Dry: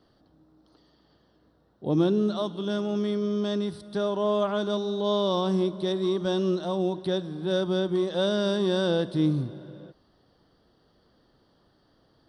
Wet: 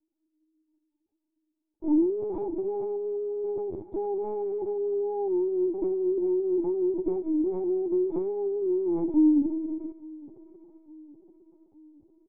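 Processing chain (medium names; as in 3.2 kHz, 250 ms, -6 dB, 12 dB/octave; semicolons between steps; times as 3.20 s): comb filter that takes the minimum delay 2.5 ms; high-pass 170 Hz 24 dB/octave; band-stop 1.5 kHz, Q 18; waveshaping leveller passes 5; compression 4:1, threshold -19 dBFS, peak gain reduction 4 dB; cascade formant filter u; feedback delay 864 ms, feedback 54%, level -23 dB; reverberation RT60 0.50 s, pre-delay 21 ms, DRR 18.5 dB; LPC vocoder at 8 kHz pitch kept; trim +2 dB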